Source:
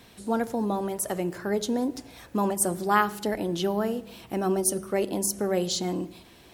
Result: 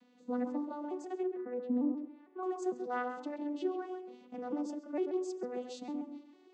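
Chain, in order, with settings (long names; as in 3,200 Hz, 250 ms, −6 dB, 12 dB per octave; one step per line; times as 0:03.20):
vocoder with an arpeggio as carrier minor triad, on B3, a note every 452 ms
0:01.23–0:02.43: high-frequency loss of the air 490 metres
tape delay 133 ms, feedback 20%, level −4.5 dB, low-pass 1,300 Hz
level −9 dB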